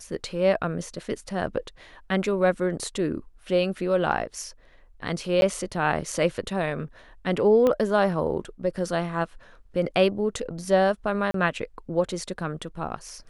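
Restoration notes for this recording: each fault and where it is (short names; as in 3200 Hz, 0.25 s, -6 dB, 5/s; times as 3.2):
5.41–5.42 gap 11 ms
7.67 pop -12 dBFS
11.31–11.34 gap 33 ms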